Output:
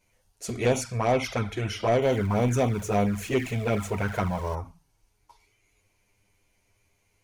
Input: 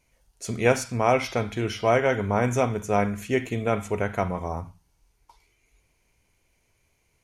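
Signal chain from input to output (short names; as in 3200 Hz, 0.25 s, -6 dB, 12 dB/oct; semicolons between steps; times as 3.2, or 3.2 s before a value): 2.02–4.55 zero-crossing step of -37.5 dBFS; envelope flanger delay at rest 10.1 ms, full sweep at -17.5 dBFS; soft clip -18 dBFS, distortion -14 dB; gain +2.5 dB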